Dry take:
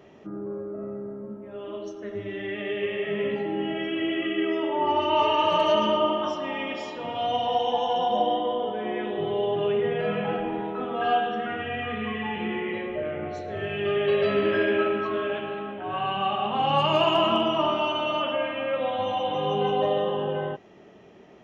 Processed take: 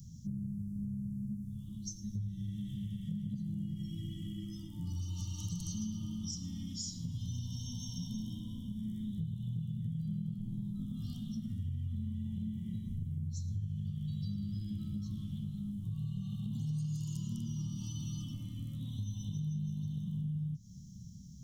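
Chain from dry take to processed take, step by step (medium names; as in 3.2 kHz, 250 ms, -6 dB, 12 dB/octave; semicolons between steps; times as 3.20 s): inverse Chebyshev band-stop 390–2700 Hz, stop band 50 dB; peaking EQ 470 Hz -14.5 dB 1.7 oct; compression 6:1, threshold -51 dBFS, peak gain reduction 15 dB; trim +16 dB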